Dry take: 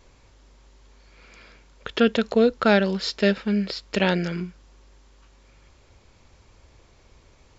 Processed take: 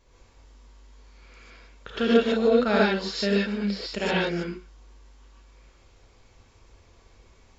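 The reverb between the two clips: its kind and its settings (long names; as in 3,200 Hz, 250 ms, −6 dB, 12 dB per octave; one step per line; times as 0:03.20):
reverb whose tail is shaped and stops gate 170 ms rising, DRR −6.5 dB
level −8.5 dB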